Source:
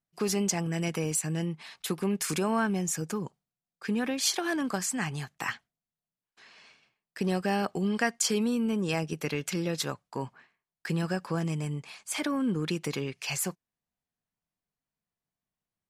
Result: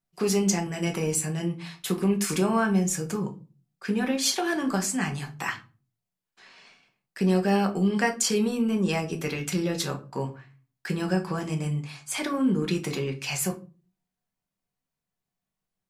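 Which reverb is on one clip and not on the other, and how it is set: simulated room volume 170 m³, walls furnished, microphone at 1.1 m; trim +1 dB

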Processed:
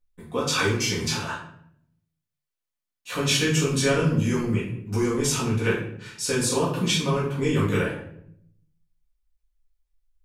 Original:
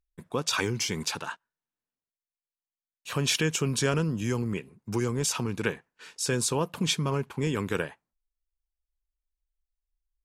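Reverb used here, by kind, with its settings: simulated room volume 120 m³, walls mixed, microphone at 1.9 m; trim -3 dB

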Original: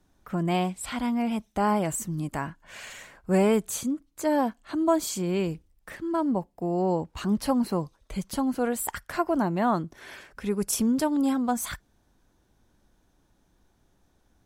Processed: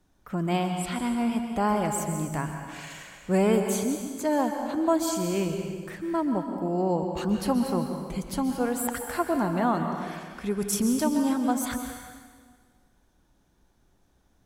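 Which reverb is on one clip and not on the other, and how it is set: plate-style reverb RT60 1.7 s, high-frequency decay 0.9×, pre-delay 115 ms, DRR 4.5 dB; trim -1 dB

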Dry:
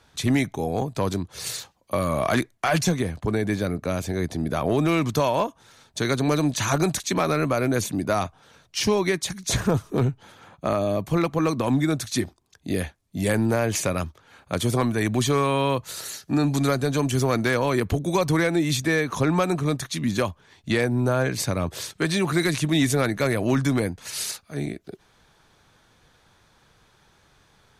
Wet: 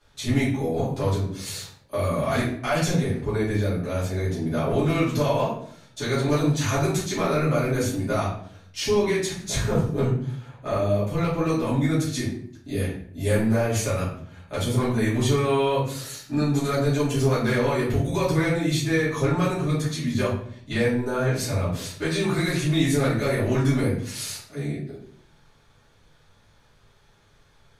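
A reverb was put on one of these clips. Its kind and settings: simulated room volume 82 m³, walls mixed, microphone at 2.6 m; trim -12.5 dB

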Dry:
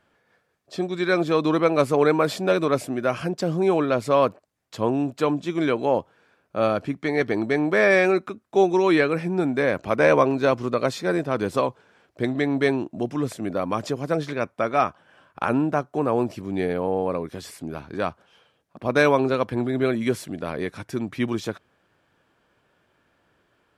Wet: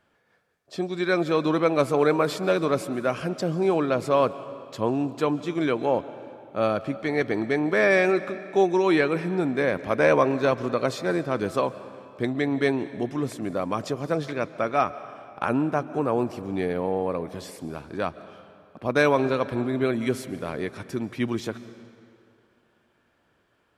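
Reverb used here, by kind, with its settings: algorithmic reverb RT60 2.4 s, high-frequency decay 0.85×, pre-delay 100 ms, DRR 14.5 dB; trim -2 dB

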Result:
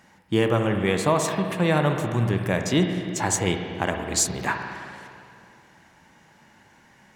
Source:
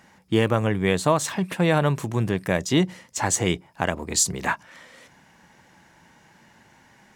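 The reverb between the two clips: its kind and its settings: spring tank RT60 2.4 s, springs 51/60 ms, chirp 25 ms, DRR 4.5 dB; trim -1.5 dB

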